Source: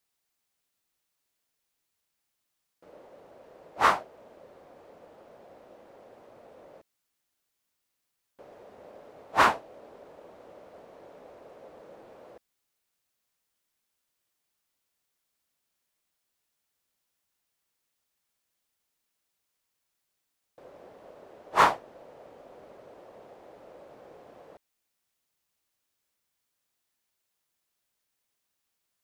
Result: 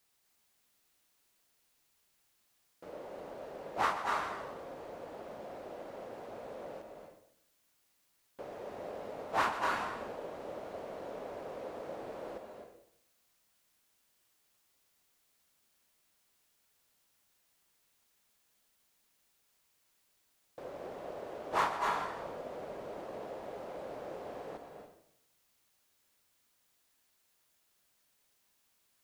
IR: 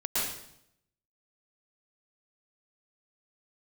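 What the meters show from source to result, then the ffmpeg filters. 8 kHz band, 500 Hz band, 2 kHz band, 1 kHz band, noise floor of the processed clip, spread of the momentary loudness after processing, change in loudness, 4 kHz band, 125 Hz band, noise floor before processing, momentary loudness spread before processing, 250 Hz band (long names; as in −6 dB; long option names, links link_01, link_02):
−6.5 dB, −0.5 dB, −7.0 dB, −6.5 dB, −74 dBFS, 16 LU, −14.5 dB, −7.0 dB, −3.0 dB, −81 dBFS, 13 LU, −1.5 dB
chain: -filter_complex "[0:a]asplit=2[link_01][link_02];[1:a]atrim=start_sample=2205,adelay=122[link_03];[link_02][link_03]afir=irnorm=-1:irlink=0,volume=-12.5dB[link_04];[link_01][link_04]amix=inputs=2:normalize=0,acompressor=threshold=-39dB:ratio=3,volume=5.5dB"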